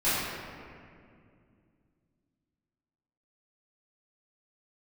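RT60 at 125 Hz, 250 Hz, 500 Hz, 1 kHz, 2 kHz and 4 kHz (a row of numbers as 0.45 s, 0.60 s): 3.5 s, 3.4 s, 2.5 s, 2.1 s, 2.0 s, 1.3 s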